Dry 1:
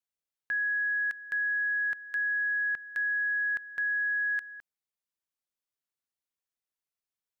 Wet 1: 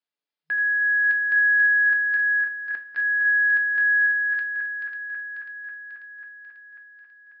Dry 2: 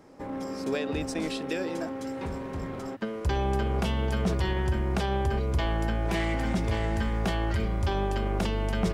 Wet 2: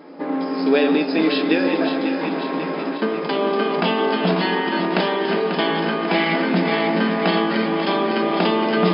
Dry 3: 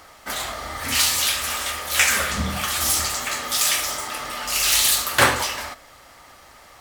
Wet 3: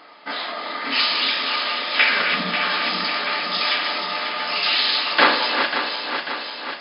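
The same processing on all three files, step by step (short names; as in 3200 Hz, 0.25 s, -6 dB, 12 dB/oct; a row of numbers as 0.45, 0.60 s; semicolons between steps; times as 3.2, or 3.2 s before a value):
regenerating reverse delay 0.271 s, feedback 77%, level -7 dB; two-slope reverb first 0.27 s, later 3.2 s, from -21 dB, DRR 4 dB; FFT band-pass 160–5200 Hz; match loudness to -20 LUFS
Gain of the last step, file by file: +2.5, +10.5, +0.5 dB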